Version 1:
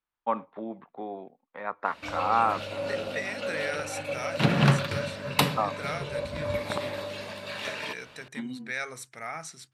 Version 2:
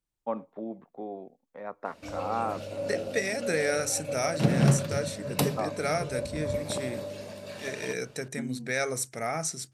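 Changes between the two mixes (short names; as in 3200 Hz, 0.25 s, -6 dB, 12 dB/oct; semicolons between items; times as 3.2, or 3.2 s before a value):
second voice +11.5 dB; master: add band shelf 1900 Hz -10 dB 2.6 oct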